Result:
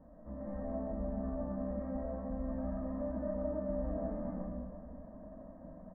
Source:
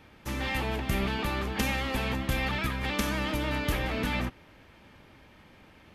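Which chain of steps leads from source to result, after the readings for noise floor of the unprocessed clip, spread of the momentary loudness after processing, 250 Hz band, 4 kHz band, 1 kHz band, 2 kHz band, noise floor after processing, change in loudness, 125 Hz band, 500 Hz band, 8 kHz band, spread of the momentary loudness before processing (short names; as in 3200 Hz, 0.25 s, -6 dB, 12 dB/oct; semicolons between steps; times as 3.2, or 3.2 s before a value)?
-56 dBFS, 14 LU, -5.0 dB, under -40 dB, -14.5 dB, -31.0 dB, -53 dBFS, -9.0 dB, -11.0 dB, -2.5 dB, under -35 dB, 2 LU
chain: comb 1.1 ms, depth 57%; reverse; compressor 6:1, threshold -38 dBFS, peak gain reduction 17 dB; reverse; ladder low-pass 780 Hz, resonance 45%; fixed phaser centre 560 Hz, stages 8; digital reverb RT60 2 s, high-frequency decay 0.5×, pre-delay 60 ms, DRR -4.5 dB; gain +9 dB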